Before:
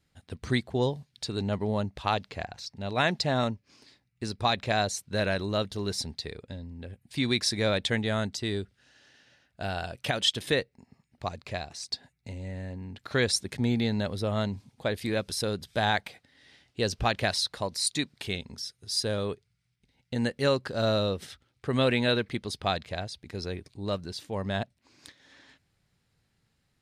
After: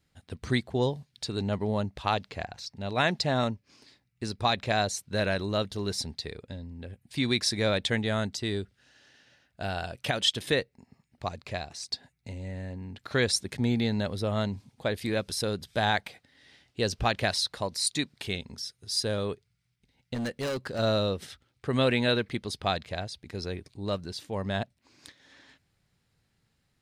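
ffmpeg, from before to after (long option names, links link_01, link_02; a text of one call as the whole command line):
ffmpeg -i in.wav -filter_complex "[0:a]asettb=1/sr,asplit=3[link_01][link_02][link_03];[link_01]atrim=end=20.144[link_04];[link_02]atrim=start=20.14:end=20.79,asetpts=PTS-STARTPTS,afade=type=in:duration=0.004:curve=qsin,afade=type=out:start_time=0.646:duration=0.004:curve=qsin,volume=28.5dB,asoftclip=hard,volume=-28.5dB[link_05];[link_03]atrim=start=20.786[link_06];[link_04][link_05]acrossfade=duration=0.004:curve1=hsin:curve2=qsin[link_07];[link_07][link_06]acrossfade=duration=0.004:curve1=qsin:curve2=hsin" out.wav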